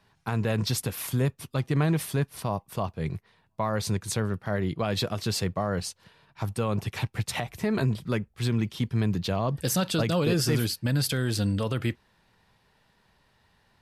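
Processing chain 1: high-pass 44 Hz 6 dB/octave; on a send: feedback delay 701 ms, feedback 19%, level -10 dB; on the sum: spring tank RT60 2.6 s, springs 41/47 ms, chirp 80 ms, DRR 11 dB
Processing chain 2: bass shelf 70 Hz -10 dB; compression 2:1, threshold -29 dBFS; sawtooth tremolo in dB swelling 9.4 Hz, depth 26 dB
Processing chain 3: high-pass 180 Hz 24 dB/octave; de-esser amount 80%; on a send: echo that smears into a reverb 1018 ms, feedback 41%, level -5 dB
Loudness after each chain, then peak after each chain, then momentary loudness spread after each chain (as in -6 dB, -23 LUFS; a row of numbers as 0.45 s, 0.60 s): -28.5 LUFS, -40.5 LUFS, -31.0 LUFS; -12.5 dBFS, -19.0 dBFS, -12.5 dBFS; 9 LU, 7 LU, 8 LU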